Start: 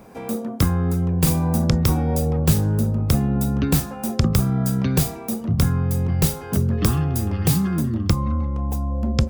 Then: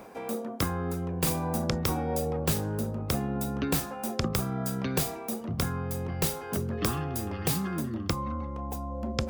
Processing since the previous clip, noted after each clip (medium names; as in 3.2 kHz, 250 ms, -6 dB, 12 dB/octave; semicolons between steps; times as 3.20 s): tone controls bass -11 dB, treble -3 dB; reverse; upward compressor, threshold -30 dBFS; reverse; trim -3 dB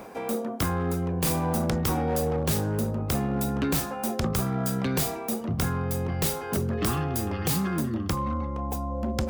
hard clipper -25.5 dBFS, distortion -12 dB; trim +4.5 dB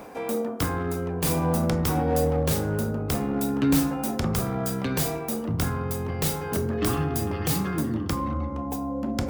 FDN reverb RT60 1.4 s, low-frequency decay 1×, high-frequency decay 0.25×, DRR 7 dB